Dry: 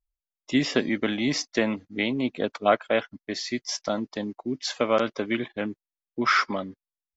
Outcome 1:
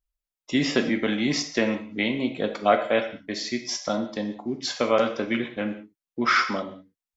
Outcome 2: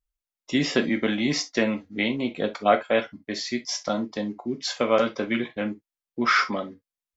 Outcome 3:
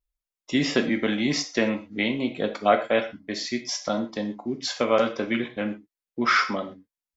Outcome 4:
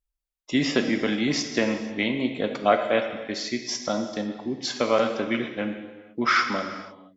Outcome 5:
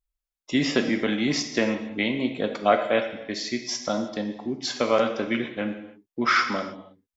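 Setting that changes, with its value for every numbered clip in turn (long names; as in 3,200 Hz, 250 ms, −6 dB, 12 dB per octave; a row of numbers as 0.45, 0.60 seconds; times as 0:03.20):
reverb whose tail is shaped and stops, gate: 220, 90, 150, 520, 340 milliseconds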